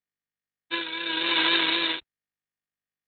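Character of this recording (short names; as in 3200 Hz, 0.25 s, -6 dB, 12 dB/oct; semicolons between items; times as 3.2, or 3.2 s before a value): a quantiser's noise floor 10-bit, dither none; tremolo triangle 0.82 Hz, depth 75%; Opus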